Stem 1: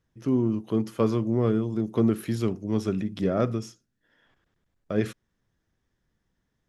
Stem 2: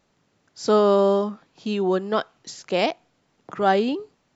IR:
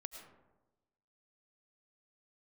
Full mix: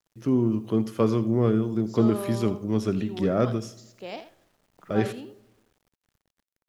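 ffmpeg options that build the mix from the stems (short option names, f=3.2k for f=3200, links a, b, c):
-filter_complex "[0:a]volume=0dB,asplit=3[a][b][c];[b]volume=-11.5dB[d];[c]volume=-15.5dB[e];[1:a]adelay=1300,volume=-17dB,asplit=3[f][g][h];[g]volume=-12.5dB[i];[h]volume=-10.5dB[j];[2:a]atrim=start_sample=2205[k];[d][i]amix=inputs=2:normalize=0[l];[l][k]afir=irnorm=-1:irlink=0[m];[e][j]amix=inputs=2:normalize=0,aecho=0:1:82:1[n];[a][f][m][n]amix=inputs=4:normalize=0,acrusher=bits=10:mix=0:aa=0.000001"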